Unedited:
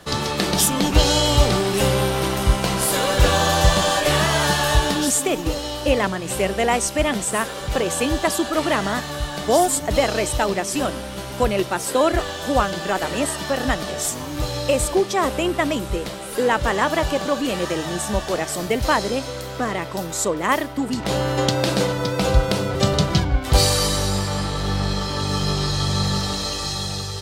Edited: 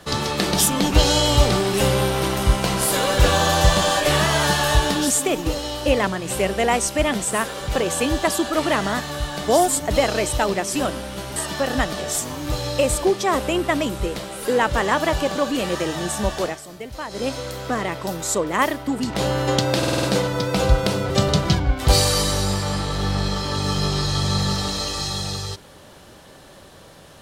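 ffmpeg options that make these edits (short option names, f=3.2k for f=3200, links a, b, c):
-filter_complex "[0:a]asplit=9[a][b][c][d][e][f][g][h][i];[a]atrim=end=11.362[j];[b]atrim=start=13.258:end=18.51,asetpts=PTS-STARTPTS,afade=t=out:st=5.062:d=0.19:silence=0.223872[k];[c]atrim=start=18.51:end=18.99,asetpts=PTS-STARTPTS,volume=-13dB[l];[d]atrim=start=18.99:end=21.732,asetpts=PTS-STARTPTS,afade=t=in:d=0.19:silence=0.223872[m];[e]atrim=start=21.678:end=21.732[n];[f]atrim=start=21.678:end=21.732[o];[g]atrim=start=21.678:end=21.732[p];[h]atrim=start=21.678:end=21.732[q];[i]atrim=start=21.678[r];[k][l][m]concat=n=3:v=0:a=1[s];[j][s]acrossfade=d=0.004:c1=hsin:c2=hsin[t];[t][n]acrossfade=d=0.004:c1=hsin:c2=hsin[u];[u][o]acrossfade=d=0.004:c1=hsin:c2=hsin[v];[v][p]acrossfade=d=0.004:c1=hsin:c2=hsin[w];[w][q]acrossfade=d=0.004:c1=hsin:c2=hsin[x];[x][r]acrossfade=d=0.004:c1=hsin:c2=hsin"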